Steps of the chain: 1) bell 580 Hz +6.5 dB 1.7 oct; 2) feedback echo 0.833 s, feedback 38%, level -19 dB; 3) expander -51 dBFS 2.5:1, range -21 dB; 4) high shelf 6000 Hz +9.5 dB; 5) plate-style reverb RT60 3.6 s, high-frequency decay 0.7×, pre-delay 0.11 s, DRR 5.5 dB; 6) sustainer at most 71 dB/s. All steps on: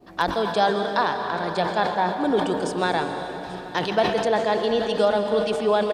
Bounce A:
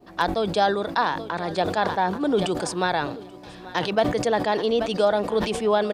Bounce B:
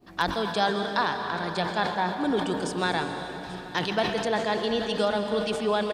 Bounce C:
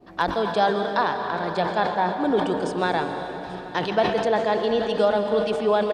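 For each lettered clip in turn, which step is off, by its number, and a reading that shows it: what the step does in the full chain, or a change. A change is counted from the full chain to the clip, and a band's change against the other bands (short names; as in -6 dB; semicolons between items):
5, 8 kHz band +4.5 dB; 1, 500 Hz band -4.5 dB; 4, 8 kHz band -5.5 dB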